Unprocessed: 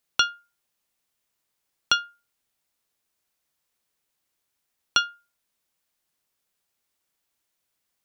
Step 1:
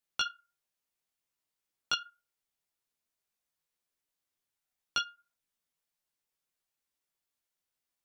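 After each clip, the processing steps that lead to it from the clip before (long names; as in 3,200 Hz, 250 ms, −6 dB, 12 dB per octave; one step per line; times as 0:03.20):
multi-voice chorus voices 4, 0.71 Hz, delay 16 ms, depth 4.3 ms
level −6.5 dB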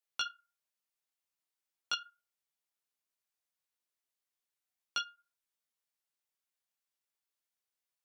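low-shelf EQ 320 Hz −9.5 dB
level −3.5 dB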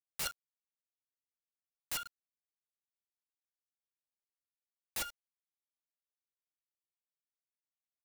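bit reduction 9 bits
wrap-around overflow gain 36.5 dB
level +6 dB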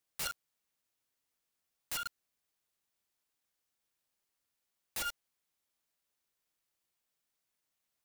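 brickwall limiter −42.5 dBFS, peak gain reduction 12 dB
level +11 dB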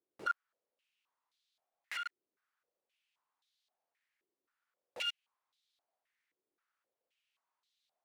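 in parallel at −2 dB: downward compressor, threshold −45 dBFS, peak gain reduction 11 dB
on the sum: band-pass on a step sequencer 3.8 Hz 370–3,800 Hz
level +7.5 dB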